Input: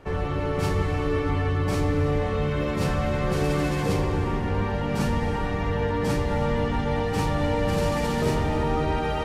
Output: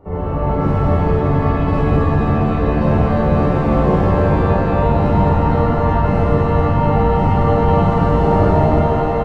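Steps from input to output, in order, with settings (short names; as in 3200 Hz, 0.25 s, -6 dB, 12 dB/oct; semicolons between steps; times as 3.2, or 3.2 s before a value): ending faded out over 0.69 s; polynomial smoothing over 65 samples; loudspeakers at several distances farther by 17 m -3 dB, 98 m -11 dB; shimmer reverb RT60 3.4 s, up +7 st, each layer -8 dB, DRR -9 dB; gain +1 dB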